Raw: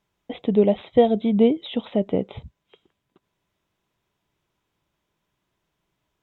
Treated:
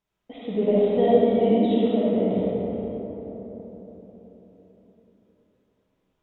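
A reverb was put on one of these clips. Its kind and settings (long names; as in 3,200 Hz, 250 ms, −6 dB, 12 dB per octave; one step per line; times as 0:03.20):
comb and all-pass reverb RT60 4.3 s, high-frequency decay 0.3×, pre-delay 15 ms, DRR −9 dB
level −10 dB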